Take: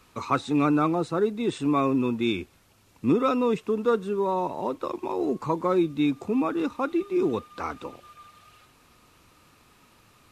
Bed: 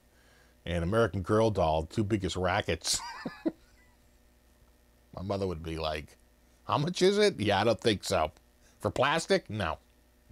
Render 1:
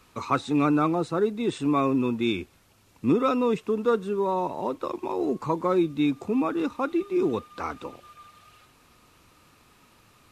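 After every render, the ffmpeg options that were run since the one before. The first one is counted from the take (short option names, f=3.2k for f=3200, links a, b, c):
-af anull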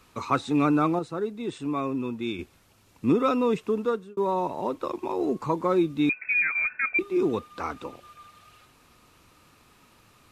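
-filter_complex "[0:a]asettb=1/sr,asplit=3[a][b][c];[a]atrim=end=6.094[d];[b]atrim=start=6.09:end=6.99,asetpts=PTS-STARTPTS,afade=t=in:d=0.004:c=qsin,afade=t=out:st=0.896:d=0.004:c=qsin,lowpass=f=2.3k:t=q:w=0.5098,lowpass=f=2.3k:t=q:w=0.6013,lowpass=f=2.3k:t=q:w=0.9,lowpass=f=2.3k:t=q:w=2.563,afreqshift=-2700[e];[c]atrim=start=6.986[f];[d][e]acrossfade=d=0.004:c1=hsin:c2=qsin[g];[g][f]acrossfade=d=0.004:c1=qsin:c2=hsin,asplit=4[h][i][j][k];[h]atrim=end=0.992[l];[i]atrim=start=0.988:end=2.392,asetpts=PTS-STARTPTS,volume=-5.5dB[m];[j]atrim=start=2.388:end=4.17,asetpts=PTS-STARTPTS,afade=t=out:st=1.382:d=0.4[n];[k]atrim=start=4.17,asetpts=PTS-STARTPTS,afade=t=in:d=0.004:c=hsin[o];[l][m]acrossfade=d=0.004:c1=hsin:c2=hsin[p];[n][o]concat=n=2:v=0:a=1[q];[p][q]acrossfade=d=0.004:c1=hsin:c2=hsin"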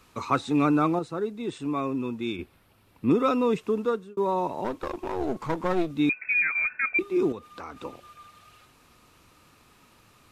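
-filter_complex "[0:a]asettb=1/sr,asplit=3[a][b][c];[a]atrim=end=2.364[d];[b]atrim=start=2.36:end=3.11,asetpts=PTS-STARTPTS,afade=t=in:d=0.004:c=qsin,afade=t=out:st=0.746:d=0.004:c=qsin,equalizer=f=6.7k:t=o:w=0.85:g=-12.5[e];[c]atrim=start=3.106[f];[d][e]acrossfade=d=0.004:c1=hsin:c2=qsin[g];[g][f]acrossfade=d=0.004:c1=qsin:c2=hsin,asettb=1/sr,asplit=3[h][i][j];[h]atrim=end=4.644[k];[i]atrim=start=4.64:end=5.91,asetpts=PTS-STARTPTS,afade=t=in:d=0.004:c=qsin,afade=t=out:st=1.266:d=0.004:c=qsin,aeval=exprs='clip(val(0),-1,0.0178)':c=same[l];[j]atrim=start=5.906[m];[k][l]acrossfade=d=0.004:c1=hsin:c2=qsin[n];[n][m]acrossfade=d=0.004:c1=qsin:c2=hsin,asettb=1/sr,asplit=3[o][p][q];[o]atrim=end=7.324[r];[p]atrim=start=7.32:end=7.81,asetpts=PTS-STARTPTS,afade=t=in:d=0.004:c=qsin,afade=t=out:st=0.486:d=0.004:c=qsin,acompressor=threshold=-37dB:ratio=3:attack=3.2:release=140:knee=1:detection=peak[s];[q]atrim=start=7.806[t];[r][s]acrossfade=d=0.004:c1=hsin:c2=qsin[u];[u][t]acrossfade=d=0.004:c1=qsin:c2=hsin"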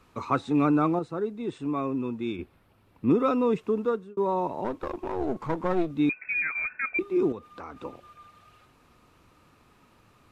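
-af "highshelf=f=2.6k:g=-9.5"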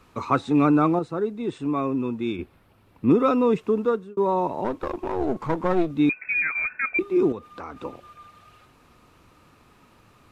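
-af "volume=4dB"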